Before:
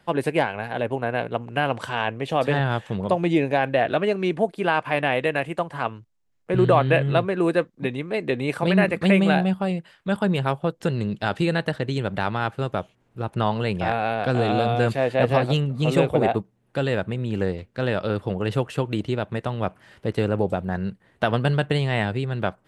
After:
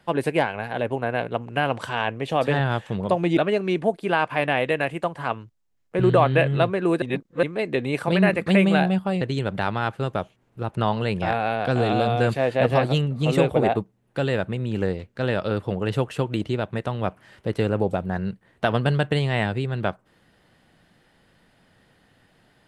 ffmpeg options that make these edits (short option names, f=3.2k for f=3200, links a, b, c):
-filter_complex "[0:a]asplit=5[a][b][c][d][e];[a]atrim=end=3.372[f];[b]atrim=start=3.918:end=7.572[g];[c]atrim=start=7.568:end=7.982,asetpts=PTS-STARTPTS,areverse[h];[d]atrim=start=7.978:end=9.762[i];[e]atrim=start=11.798[j];[f][g]acrossfade=d=0.004:c1=hsin:c2=hsin[k];[k][h]acrossfade=d=0.004:c1=hsin:c2=hsin[l];[l][i]acrossfade=d=0.004:c1=hsin:c2=hsin[m];[m][j]acrossfade=d=0.004:c1=hsin:c2=hsin"